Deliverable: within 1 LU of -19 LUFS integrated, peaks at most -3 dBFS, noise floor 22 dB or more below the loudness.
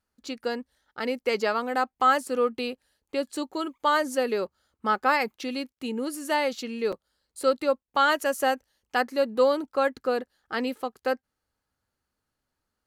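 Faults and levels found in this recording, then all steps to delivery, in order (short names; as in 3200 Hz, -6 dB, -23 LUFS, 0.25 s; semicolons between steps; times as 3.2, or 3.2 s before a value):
dropouts 1; longest dropout 6.1 ms; loudness -27.0 LUFS; peak -9.0 dBFS; loudness target -19.0 LUFS
-> interpolate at 6.92, 6.1 ms; gain +8 dB; limiter -3 dBFS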